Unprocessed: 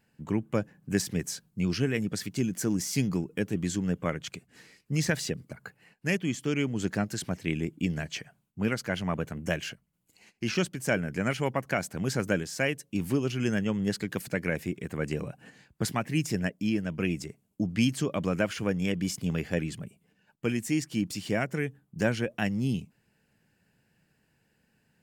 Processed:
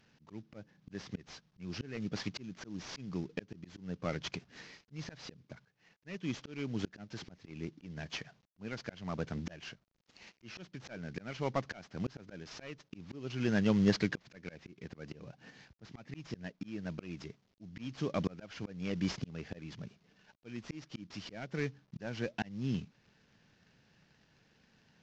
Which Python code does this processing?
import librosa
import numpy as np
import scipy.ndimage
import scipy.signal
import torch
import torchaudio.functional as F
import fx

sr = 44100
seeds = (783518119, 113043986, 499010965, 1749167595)

y = fx.cvsd(x, sr, bps=32000)
y = fx.auto_swell(y, sr, attack_ms=660.0)
y = y * 10.0 ** (2.0 / 20.0)